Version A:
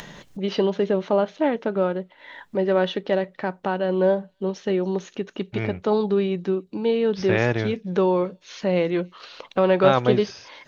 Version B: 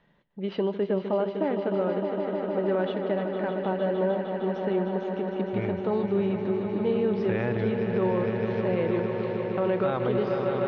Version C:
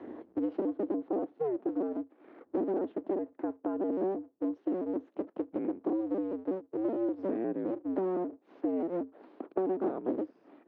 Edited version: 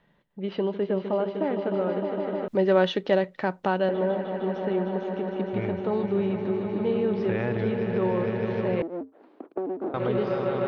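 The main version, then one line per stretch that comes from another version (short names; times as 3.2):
B
2.48–3.89 from A
8.82–9.94 from C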